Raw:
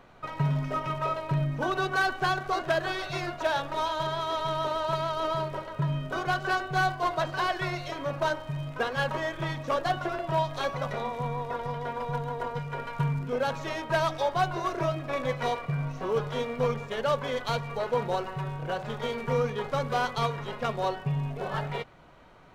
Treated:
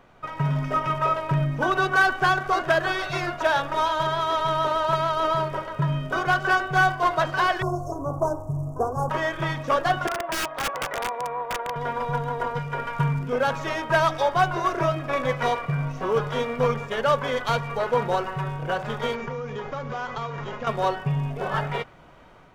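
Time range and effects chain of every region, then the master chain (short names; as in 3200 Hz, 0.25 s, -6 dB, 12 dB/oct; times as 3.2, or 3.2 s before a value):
7.62–9.1 inverse Chebyshev band-stop 1800–3900 Hz, stop band 50 dB + bell 76 Hz +14 dB 1.1 oct + comb 2.7 ms, depth 42%
10.07–11.76 three-band isolator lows -23 dB, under 340 Hz, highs -22 dB, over 2300 Hz + wrapped overs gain 26 dB + Doppler distortion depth 0.16 ms
19.15–20.67 median filter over 9 samples + steep low-pass 7100 Hz 96 dB/oct + compressor 10:1, threshold -32 dBFS
whole clip: notch 4100 Hz, Q 11; dynamic EQ 1400 Hz, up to +4 dB, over -43 dBFS, Q 1.2; AGC gain up to 4 dB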